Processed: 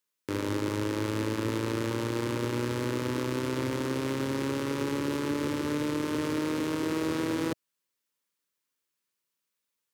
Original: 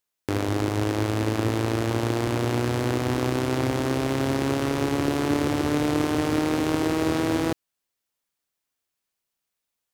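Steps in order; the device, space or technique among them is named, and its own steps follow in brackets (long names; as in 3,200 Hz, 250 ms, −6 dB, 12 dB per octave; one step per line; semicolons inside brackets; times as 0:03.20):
PA system with an anti-feedback notch (high-pass filter 120 Hz 12 dB per octave; Butterworth band-reject 720 Hz, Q 3.2; brickwall limiter −18 dBFS, peak gain reduction 8 dB)
level −1 dB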